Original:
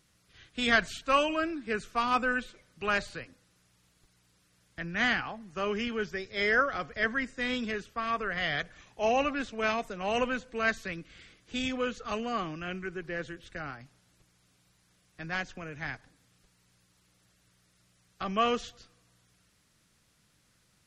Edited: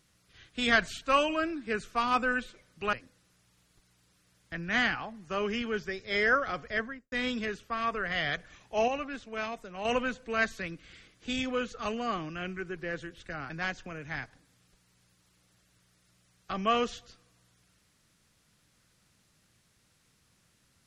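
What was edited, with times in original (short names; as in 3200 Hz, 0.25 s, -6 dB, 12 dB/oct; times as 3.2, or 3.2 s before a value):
2.93–3.19 cut
6.93–7.38 studio fade out
9.14–10.11 gain -6 dB
13.76–15.21 cut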